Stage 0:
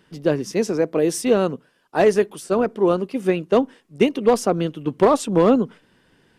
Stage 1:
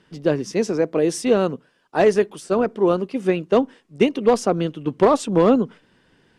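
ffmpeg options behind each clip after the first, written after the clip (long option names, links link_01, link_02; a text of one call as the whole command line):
ffmpeg -i in.wav -af "lowpass=8700" out.wav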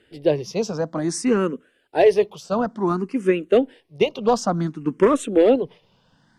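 ffmpeg -i in.wav -filter_complex "[0:a]asplit=2[link_01][link_02];[link_02]afreqshift=0.56[link_03];[link_01][link_03]amix=inputs=2:normalize=1,volume=2dB" out.wav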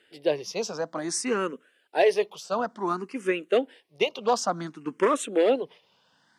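ffmpeg -i in.wav -af "highpass=frequency=820:poles=1" out.wav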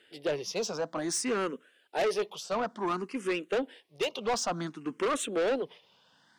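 ffmpeg -i in.wav -af "equalizer=frequency=3400:width_type=o:width=0.38:gain=3,asoftclip=type=tanh:threshold=-24.5dB" out.wav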